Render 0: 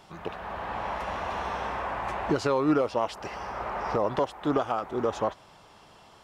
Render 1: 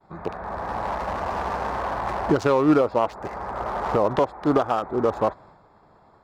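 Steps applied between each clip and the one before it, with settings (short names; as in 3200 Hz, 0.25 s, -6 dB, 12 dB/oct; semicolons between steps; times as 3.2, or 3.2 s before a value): Wiener smoothing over 15 samples; expander -50 dBFS; gain +6 dB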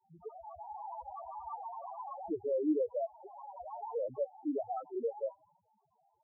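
loudest bins only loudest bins 2; tilt +3.5 dB/oct; gain -5.5 dB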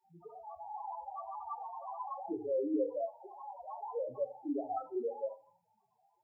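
reverb RT60 0.40 s, pre-delay 3 ms, DRR 7.5 dB; gain +1 dB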